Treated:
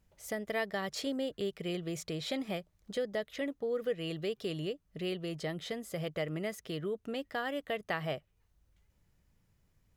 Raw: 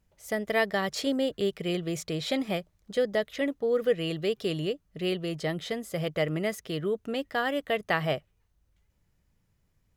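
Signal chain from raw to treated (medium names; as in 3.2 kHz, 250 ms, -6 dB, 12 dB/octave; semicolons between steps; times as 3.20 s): compression 1.5:1, threshold -45 dBFS, peak gain reduction 9 dB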